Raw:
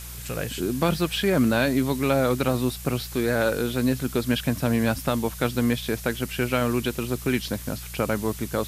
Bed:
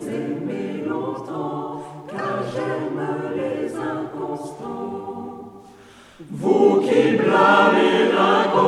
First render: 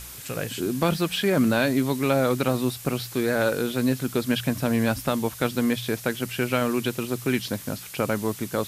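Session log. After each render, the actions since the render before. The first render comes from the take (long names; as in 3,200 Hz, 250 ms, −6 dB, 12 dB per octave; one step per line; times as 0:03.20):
hum removal 60 Hz, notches 3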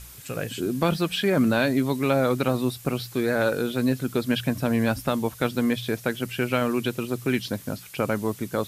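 broadband denoise 6 dB, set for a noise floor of −40 dBFS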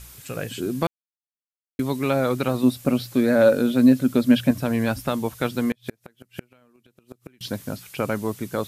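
0:00.87–0:01.79: silence
0:02.63–0:04.51: hollow resonant body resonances 250/560 Hz, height 10 dB
0:05.71–0:07.41: gate with flip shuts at −16 dBFS, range −34 dB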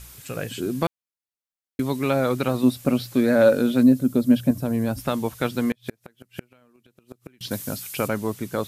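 0:03.83–0:04.98: parametric band 2,300 Hz −10.5 dB 2.6 octaves
0:07.51–0:08.08: high-shelf EQ 4,700 Hz +11.5 dB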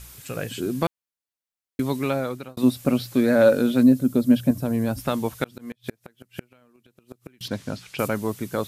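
0:01.96–0:02.57: fade out
0:05.44–0:05.84: volume swells 428 ms
0:07.48–0:07.99: low-pass filter 4,200 Hz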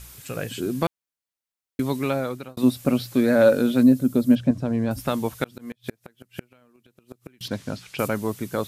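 0:04.35–0:04.91: high-frequency loss of the air 95 metres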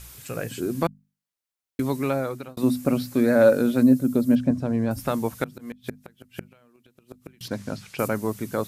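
mains-hum notches 50/100/150/200/250 Hz
dynamic equaliser 3,300 Hz, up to −7 dB, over −50 dBFS, Q 1.9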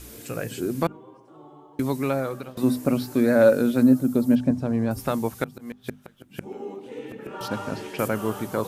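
mix in bed −21 dB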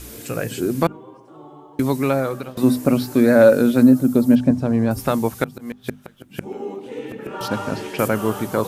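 level +5.5 dB
brickwall limiter −3 dBFS, peak gain reduction 2 dB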